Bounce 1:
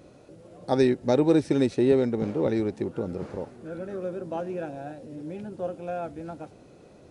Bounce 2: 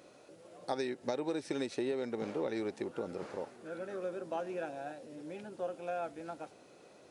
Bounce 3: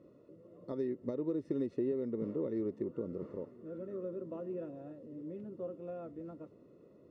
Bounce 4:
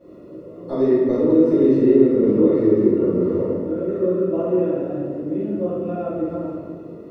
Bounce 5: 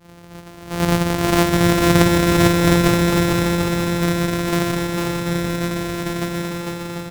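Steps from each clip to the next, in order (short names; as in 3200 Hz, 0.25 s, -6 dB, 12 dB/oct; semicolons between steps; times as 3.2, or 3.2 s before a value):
HPF 770 Hz 6 dB/oct; compressor 10:1, threshold -31 dBFS, peak gain reduction 10 dB
running mean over 56 samples; gain +4.5 dB
reverb RT60 1.8 s, pre-delay 3 ms, DRR -16 dB; gain +1 dB
sample sorter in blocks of 256 samples; on a send: bouncing-ball echo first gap 0.45 s, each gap 0.65×, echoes 5; on the sum: gain -1 dB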